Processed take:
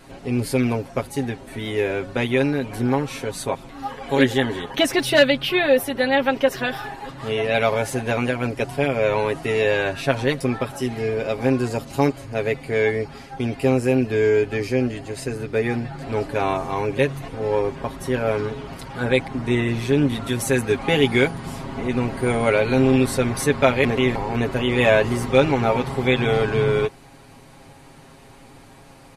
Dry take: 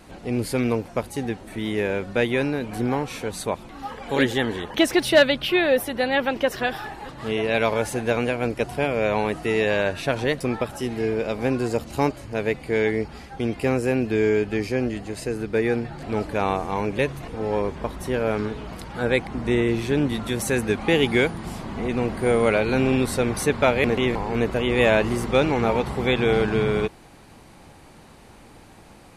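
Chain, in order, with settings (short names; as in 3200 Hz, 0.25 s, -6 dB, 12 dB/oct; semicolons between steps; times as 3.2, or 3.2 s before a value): comb 7.4 ms, depth 70%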